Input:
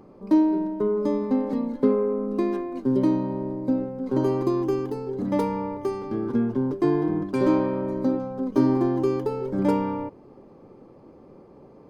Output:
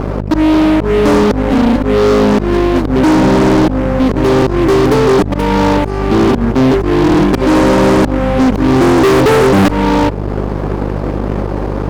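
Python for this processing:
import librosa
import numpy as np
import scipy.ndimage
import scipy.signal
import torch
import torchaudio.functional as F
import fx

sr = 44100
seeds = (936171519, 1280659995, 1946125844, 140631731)

y = fx.auto_swell(x, sr, attack_ms=762.0)
y = fx.add_hum(y, sr, base_hz=50, snr_db=12)
y = fx.fuzz(y, sr, gain_db=39.0, gate_db=-48.0)
y = F.gain(torch.from_numpy(y), 6.5).numpy()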